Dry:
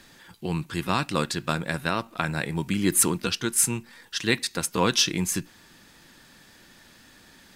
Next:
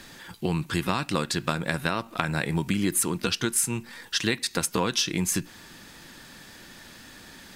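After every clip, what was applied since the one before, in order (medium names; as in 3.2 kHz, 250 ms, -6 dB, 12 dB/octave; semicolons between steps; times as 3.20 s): compression 6:1, threshold -28 dBFS, peak gain reduction 12.5 dB; trim +6 dB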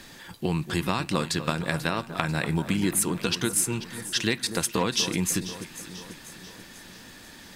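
peaking EQ 1.4 kHz -2.5 dB 0.39 oct; on a send: echo whose repeats swap between lows and highs 245 ms, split 1.4 kHz, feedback 72%, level -11 dB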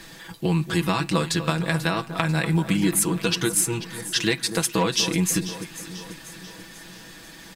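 comb 6.1 ms; trim +1.5 dB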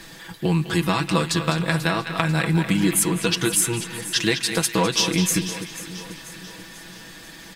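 band-passed feedback delay 204 ms, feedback 48%, band-pass 2.4 kHz, level -6.5 dB; trim +1.5 dB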